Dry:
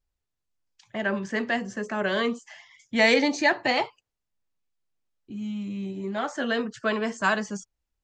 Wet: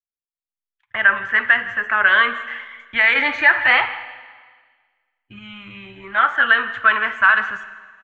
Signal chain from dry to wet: speakerphone echo 160 ms, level -20 dB; peak limiter -17 dBFS, peak gain reduction 9 dB; FFT filter 100 Hz 0 dB, 180 Hz -27 dB, 260 Hz -22 dB, 390 Hz -21 dB, 730 Hz -12 dB, 1.4 kHz +7 dB, 3.3 kHz -5 dB, 5 kHz -29 dB; gate -59 dBFS, range -33 dB; 3.15–5.39 s: harmonic-percussive split harmonic +5 dB; Schroeder reverb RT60 1.5 s, DRR 12.5 dB; level rider gain up to 13.5 dB; trim +1 dB

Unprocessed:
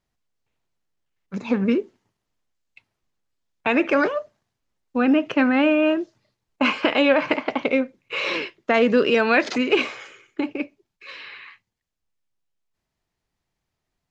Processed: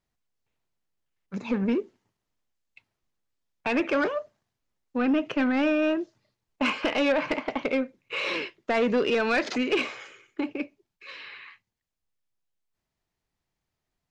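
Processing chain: saturation -13.5 dBFS, distortion -15 dB; trim -3.5 dB

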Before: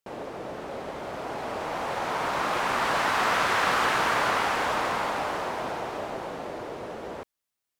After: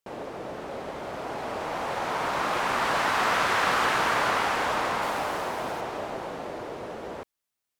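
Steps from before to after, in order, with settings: 5.02–5.81 s: treble shelf 10 kHz +9 dB

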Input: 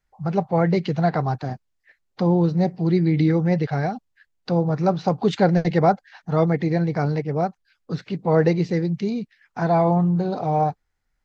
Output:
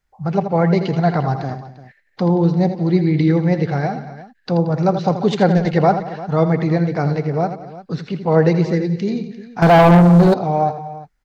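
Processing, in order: on a send: multi-tap echo 77/82/178/241/347 ms -19.5/-10.5/-18/-19/-16.5 dB; 9.62–10.34 s: on the sum: waveshaping leveller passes 3; trim +3 dB

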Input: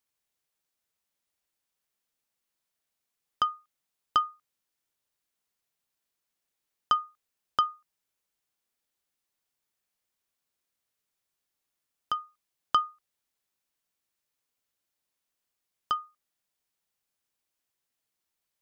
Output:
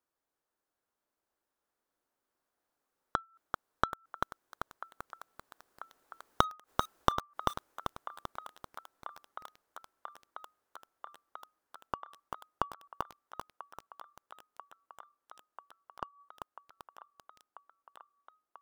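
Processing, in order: Doppler pass-by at 6.69 s, 27 m/s, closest 20 m; in parallel at -4.5 dB: integer overflow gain 23.5 dB; on the sum: high-order bell 650 Hz +12.5 dB 3 oct; saturation -12.5 dBFS, distortion -10 dB; inverted gate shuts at -31 dBFS, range -28 dB; bass shelf 220 Hz +8.5 dB; feedback echo behind a band-pass 990 ms, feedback 84%, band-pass 1.2 kHz, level -15 dB; bit-crushed delay 390 ms, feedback 55%, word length 8-bit, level -4 dB; trim +6.5 dB

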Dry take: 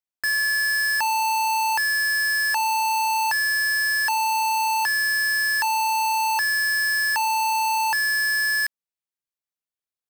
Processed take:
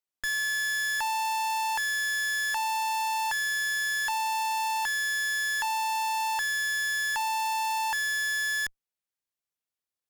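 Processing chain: tracing distortion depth 0.25 ms; one-sided clip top -34 dBFS, bottom -25 dBFS

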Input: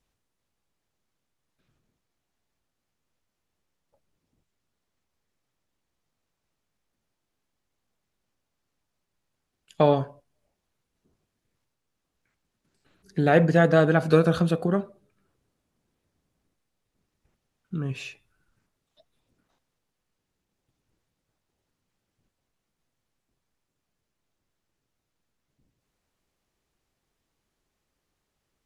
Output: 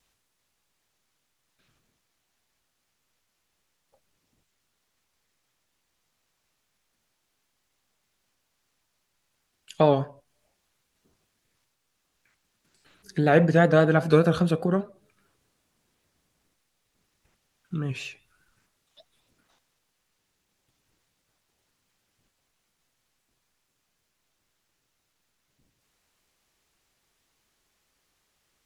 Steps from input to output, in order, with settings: vibrato 5 Hz 61 cents; tape noise reduction on one side only encoder only

